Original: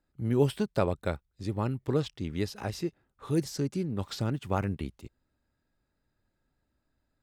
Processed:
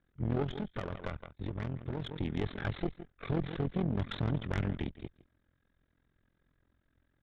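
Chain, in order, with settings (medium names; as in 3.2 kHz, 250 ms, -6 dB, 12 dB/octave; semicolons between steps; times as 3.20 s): comb filter that takes the minimum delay 0.55 ms; in parallel at -4 dB: Schmitt trigger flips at -24 dBFS; on the sum: delay 160 ms -20 dB; AM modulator 43 Hz, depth 90%; peak limiter -25.5 dBFS, peak gain reduction 10.5 dB; resampled via 8 kHz; saturation -33.5 dBFS, distortion -11 dB; 0.43–2.16 s: compression 4:1, threshold -43 dBFS, peak gain reduction 6 dB; trim +8.5 dB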